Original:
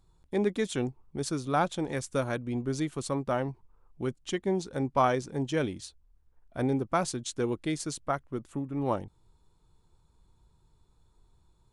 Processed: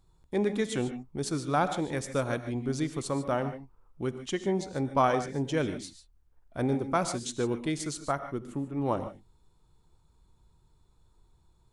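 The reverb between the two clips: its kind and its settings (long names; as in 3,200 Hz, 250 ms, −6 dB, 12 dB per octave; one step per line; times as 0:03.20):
reverb whose tail is shaped and stops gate 170 ms rising, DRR 9.5 dB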